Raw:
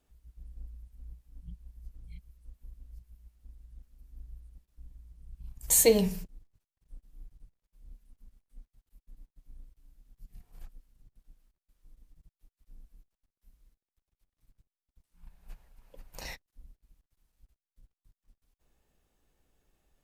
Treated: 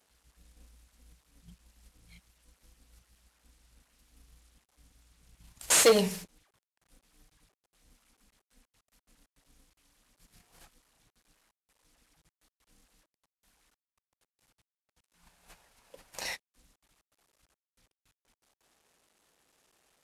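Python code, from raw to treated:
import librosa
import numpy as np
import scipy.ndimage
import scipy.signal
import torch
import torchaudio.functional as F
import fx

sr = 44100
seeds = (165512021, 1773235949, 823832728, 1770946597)

y = fx.cvsd(x, sr, bps=64000)
y = np.clip(y, -10.0 ** (-18.5 / 20.0), 10.0 ** (-18.5 / 20.0))
y = fx.highpass(y, sr, hz=510.0, slope=6)
y = y * 10.0 ** (6.5 / 20.0)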